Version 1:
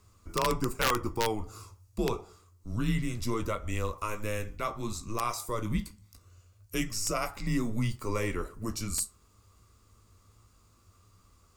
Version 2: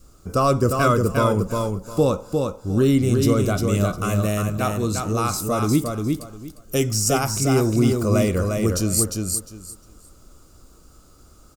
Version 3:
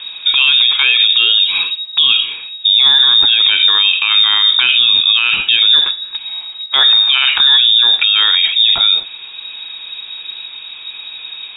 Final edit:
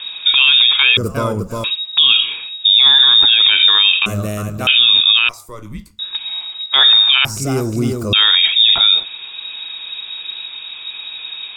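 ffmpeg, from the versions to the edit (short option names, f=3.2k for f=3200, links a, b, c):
-filter_complex "[1:a]asplit=3[a][b][c];[2:a]asplit=5[d][e][f][g][h];[d]atrim=end=0.972[i];[a]atrim=start=0.968:end=1.642[j];[e]atrim=start=1.638:end=4.062[k];[b]atrim=start=4.058:end=4.672[l];[f]atrim=start=4.668:end=5.292[m];[0:a]atrim=start=5.288:end=5.992[n];[g]atrim=start=5.988:end=7.252[o];[c]atrim=start=7.248:end=8.132[p];[h]atrim=start=8.128[q];[i][j]acrossfade=d=0.004:c1=hsin:c2=hsin[r];[r][k]acrossfade=d=0.004:c1=hsin:c2=hsin[s];[s][l]acrossfade=d=0.004:c1=hsin:c2=hsin[t];[t][m]acrossfade=d=0.004:c1=hsin:c2=hsin[u];[u][n]acrossfade=d=0.004:c1=hsin:c2=hsin[v];[v][o]acrossfade=d=0.004:c1=hsin:c2=hsin[w];[w][p]acrossfade=d=0.004:c1=hsin:c2=hsin[x];[x][q]acrossfade=d=0.004:c1=hsin:c2=hsin"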